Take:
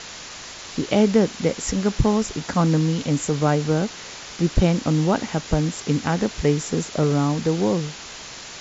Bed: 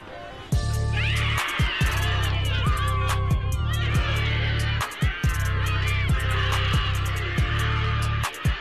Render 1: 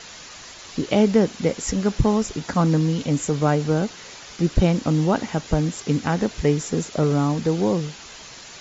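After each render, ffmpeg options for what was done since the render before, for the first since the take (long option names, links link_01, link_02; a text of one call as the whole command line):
ffmpeg -i in.wav -af "afftdn=noise_reduction=6:noise_floor=-38" out.wav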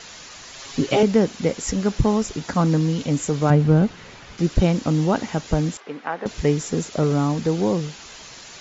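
ffmpeg -i in.wav -filter_complex "[0:a]asettb=1/sr,asplit=3[link_01][link_02][link_03];[link_01]atrim=end=0.534[link_04];[link_02]atrim=start=0.53:end=1.03,asetpts=PTS-STARTPTS,afade=type=in:duration=0.004:curve=qsin,afade=type=out:start_time=0.496:duration=0.004:curve=qsin,aecho=1:1:7.4:0.96,atrim=end_sample=22050[link_05];[link_03]atrim=start=1.026[link_06];[link_04][link_05]acrossfade=duration=0.004:curve1=hsin:curve2=qsin[link_07];[link_07][link_06]acrossfade=duration=0.004:curve1=qsin:curve2=hsin,asettb=1/sr,asplit=3[link_08][link_09][link_10];[link_08]atrim=end=3.504[link_11];[link_09]atrim=start=3.5:end=4.38,asetpts=PTS-STARTPTS,afade=type=in:duration=0.004:curve=qsin,afade=type=out:start_time=0.876:duration=0.004:curve=qsin,bass=frequency=250:gain=9,treble=frequency=4000:gain=-11[link_12];[link_10]atrim=start=4.376[link_13];[link_11][link_12]acrossfade=duration=0.004:curve1=hsin:curve2=qsin[link_14];[link_14][link_13]acrossfade=duration=0.004:curve1=qsin:curve2=hsin,asettb=1/sr,asplit=3[link_15][link_16][link_17];[link_15]atrim=end=5.774[link_18];[link_16]atrim=start=5.77:end=6.26,asetpts=PTS-STARTPTS,afade=type=in:duration=0.004:curve=qsin,afade=type=out:start_time=0.486:duration=0.004:curve=qsin,highpass=560,lowpass=2000[link_19];[link_17]atrim=start=6.256[link_20];[link_18][link_19]acrossfade=duration=0.004:curve1=hsin:curve2=qsin[link_21];[link_21][link_20]acrossfade=duration=0.004:curve1=qsin:curve2=hsin" out.wav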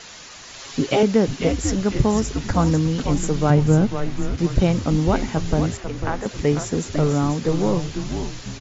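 ffmpeg -i in.wav -filter_complex "[0:a]asplit=6[link_01][link_02][link_03][link_04][link_05][link_06];[link_02]adelay=496,afreqshift=-140,volume=-6.5dB[link_07];[link_03]adelay=992,afreqshift=-280,volume=-13.6dB[link_08];[link_04]adelay=1488,afreqshift=-420,volume=-20.8dB[link_09];[link_05]adelay=1984,afreqshift=-560,volume=-27.9dB[link_10];[link_06]adelay=2480,afreqshift=-700,volume=-35dB[link_11];[link_01][link_07][link_08][link_09][link_10][link_11]amix=inputs=6:normalize=0" out.wav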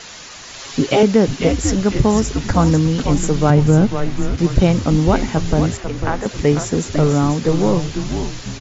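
ffmpeg -i in.wav -af "volume=4.5dB,alimiter=limit=-2dB:level=0:latency=1" out.wav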